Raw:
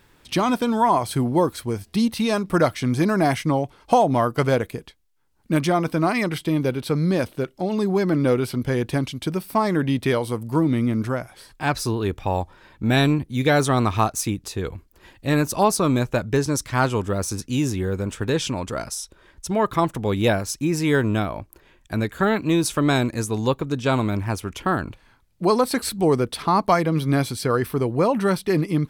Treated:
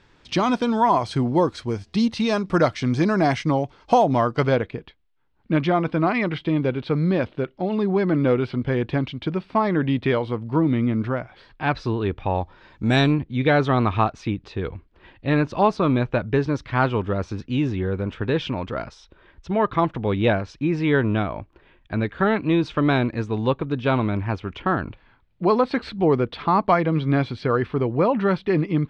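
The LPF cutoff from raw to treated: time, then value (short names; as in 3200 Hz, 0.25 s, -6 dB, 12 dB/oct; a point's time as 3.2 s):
LPF 24 dB/oct
4.25 s 6100 Hz
4.72 s 3600 Hz
12.34 s 3600 Hz
12.93 s 7900 Hz
13.19 s 3500 Hz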